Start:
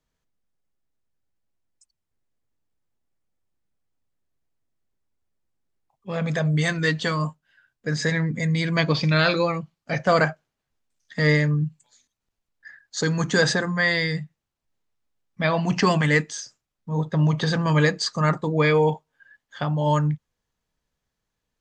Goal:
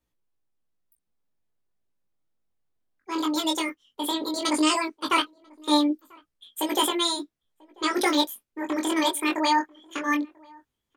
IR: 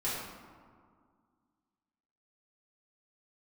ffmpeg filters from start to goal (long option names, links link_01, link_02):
-filter_complex "[0:a]asetrate=86877,aresample=44100,flanger=delay=16.5:depth=5.7:speed=0.16,asplit=2[link_01][link_02];[link_02]adelay=991.3,volume=-26dB,highshelf=frequency=4000:gain=-22.3[link_03];[link_01][link_03]amix=inputs=2:normalize=0"